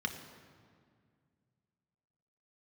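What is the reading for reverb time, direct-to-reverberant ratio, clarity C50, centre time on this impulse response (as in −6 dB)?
2.0 s, 4.5 dB, 8.5 dB, 24 ms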